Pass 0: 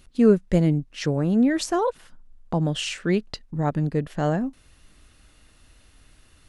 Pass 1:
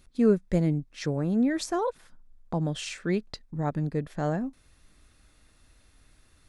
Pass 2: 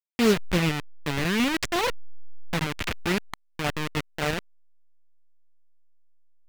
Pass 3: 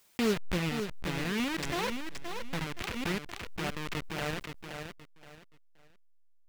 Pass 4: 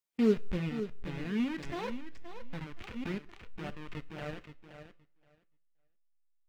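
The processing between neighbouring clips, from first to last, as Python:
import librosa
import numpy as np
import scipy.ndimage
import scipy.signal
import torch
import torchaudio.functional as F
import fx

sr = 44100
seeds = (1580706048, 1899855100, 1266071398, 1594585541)

y1 = fx.notch(x, sr, hz=2900.0, q=8.3)
y1 = F.gain(torch.from_numpy(y1), -5.0).numpy()
y2 = fx.delta_hold(y1, sr, step_db=-24.0)
y2 = fx.peak_eq(y2, sr, hz=2400.0, db=11.0, octaves=2.3)
y3 = fx.echo_feedback(y2, sr, ms=523, feedback_pct=27, wet_db=-7.0)
y3 = fx.pre_swell(y3, sr, db_per_s=35.0)
y3 = F.gain(torch.from_numpy(y3), -8.5).numpy()
y4 = fx.rev_double_slope(y3, sr, seeds[0], early_s=0.58, late_s=3.1, knee_db=-19, drr_db=11.0)
y4 = fx.spectral_expand(y4, sr, expansion=1.5)
y4 = F.gain(torch.from_numpy(y4), -1.0).numpy()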